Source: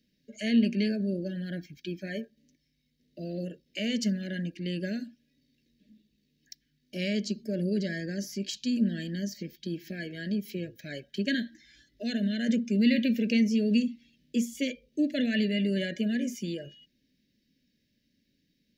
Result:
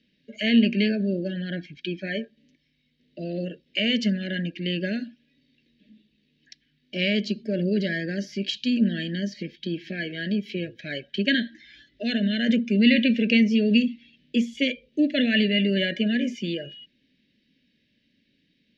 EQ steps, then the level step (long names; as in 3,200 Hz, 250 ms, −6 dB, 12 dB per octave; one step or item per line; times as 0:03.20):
low-pass with resonance 3,100 Hz, resonance Q 1.8
low-shelf EQ 94 Hz −8.5 dB
+6.0 dB